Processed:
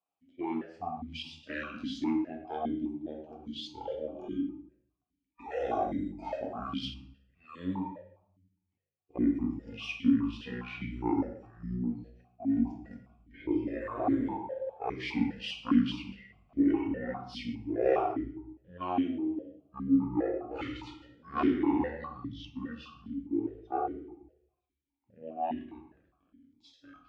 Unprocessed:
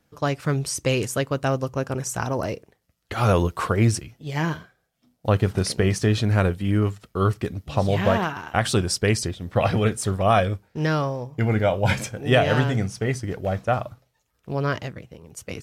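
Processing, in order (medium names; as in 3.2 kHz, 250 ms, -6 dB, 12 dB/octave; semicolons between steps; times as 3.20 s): single-diode clipper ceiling -23.5 dBFS; spectral noise reduction 14 dB; reverberation RT60 0.50 s, pre-delay 6 ms, DRR 0.5 dB; speed mistake 78 rpm record played at 45 rpm; stepped vowel filter 4.9 Hz; trim +2.5 dB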